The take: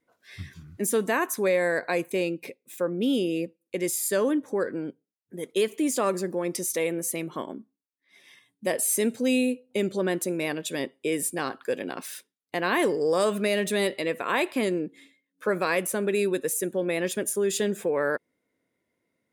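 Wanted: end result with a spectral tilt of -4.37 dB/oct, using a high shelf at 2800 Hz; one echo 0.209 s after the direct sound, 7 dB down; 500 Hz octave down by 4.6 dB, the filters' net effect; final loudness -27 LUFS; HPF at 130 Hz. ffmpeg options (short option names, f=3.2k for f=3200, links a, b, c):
-af "highpass=130,equalizer=f=500:t=o:g=-5.5,highshelf=f=2.8k:g=-8,aecho=1:1:209:0.447,volume=3dB"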